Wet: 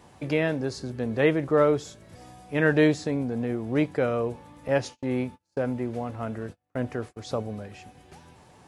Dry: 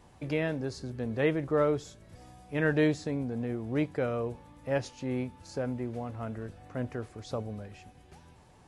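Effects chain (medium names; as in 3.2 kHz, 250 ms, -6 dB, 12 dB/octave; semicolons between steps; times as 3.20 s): high-pass 120 Hz 6 dB/octave; 4.68–7.17 s: gate -43 dBFS, range -35 dB; trim +6 dB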